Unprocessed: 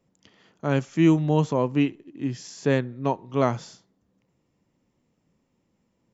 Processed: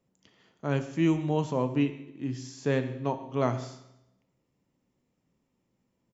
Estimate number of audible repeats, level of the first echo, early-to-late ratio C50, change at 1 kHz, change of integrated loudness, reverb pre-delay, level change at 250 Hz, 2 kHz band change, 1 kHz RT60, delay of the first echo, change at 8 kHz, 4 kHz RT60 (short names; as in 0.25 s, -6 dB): 1, -20.0 dB, 11.5 dB, -5.0 dB, -5.5 dB, 8 ms, -5.5 dB, -5.0 dB, 0.85 s, 0.137 s, n/a, 0.80 s